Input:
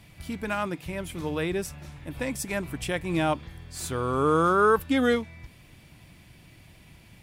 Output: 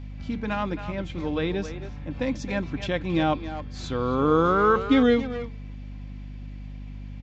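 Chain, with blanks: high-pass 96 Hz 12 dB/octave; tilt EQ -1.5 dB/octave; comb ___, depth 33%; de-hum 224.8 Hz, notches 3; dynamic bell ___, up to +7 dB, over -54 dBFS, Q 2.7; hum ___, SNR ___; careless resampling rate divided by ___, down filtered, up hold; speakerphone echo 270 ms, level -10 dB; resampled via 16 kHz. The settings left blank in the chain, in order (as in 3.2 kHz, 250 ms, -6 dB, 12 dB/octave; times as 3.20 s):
3.8 ms, 3.8 kHz, 50 Hz, 11 dB, 3×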